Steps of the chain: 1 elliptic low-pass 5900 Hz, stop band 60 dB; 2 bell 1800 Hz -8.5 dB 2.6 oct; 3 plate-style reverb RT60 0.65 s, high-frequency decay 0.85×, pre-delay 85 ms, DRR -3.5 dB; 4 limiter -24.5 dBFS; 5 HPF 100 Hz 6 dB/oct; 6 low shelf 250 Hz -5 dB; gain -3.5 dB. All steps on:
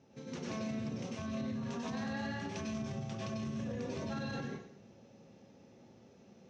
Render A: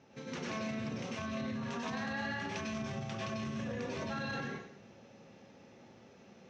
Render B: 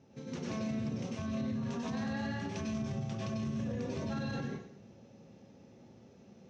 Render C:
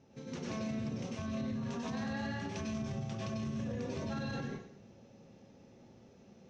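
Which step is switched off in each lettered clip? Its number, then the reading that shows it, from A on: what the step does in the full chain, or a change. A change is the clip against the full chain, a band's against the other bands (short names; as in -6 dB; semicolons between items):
2, 2 kHz band +5.0 dB; 6, 125 Hz band +3.5 dB; 5, 125 Hz band +2.0 dB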